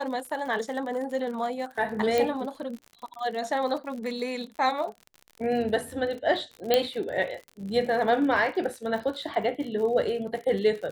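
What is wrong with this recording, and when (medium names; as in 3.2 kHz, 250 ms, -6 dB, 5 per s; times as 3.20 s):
crackle 63 per s -35 dBFS
2.18 s: pop -12 dBFS
6.74 s: pop -7 dBFS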